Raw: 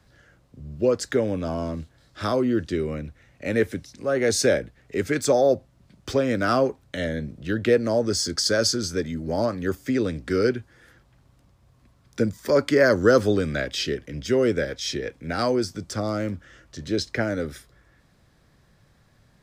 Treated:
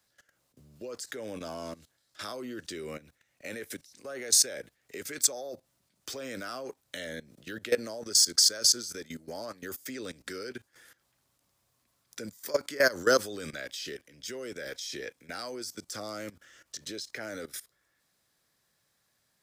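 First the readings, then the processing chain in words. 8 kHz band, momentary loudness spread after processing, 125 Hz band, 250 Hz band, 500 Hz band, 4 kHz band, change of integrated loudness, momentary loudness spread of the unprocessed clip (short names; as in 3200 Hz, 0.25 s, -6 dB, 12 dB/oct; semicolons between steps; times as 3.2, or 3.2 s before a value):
+4.0 dB, 20 LU, -21.0 dB, -17.0 dB, -12.5 dB, -0.5 dB, -6.0 dB, 12 LU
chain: RIAA curve recording; level quantiser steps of 18 dB; gain -2.5 dB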